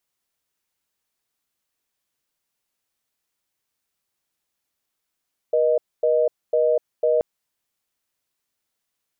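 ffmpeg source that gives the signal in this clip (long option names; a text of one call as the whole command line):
ffmpeg -f lavfi -i "aevalsrc='0.119*(sin(2*PI*480*t)+sin(2*PI*620*t))*clip(min(mod(t,0.5),0.25-mod(t,0.5))/0.005,0,1)':duration=1.68:sample_rate=44100" out.wav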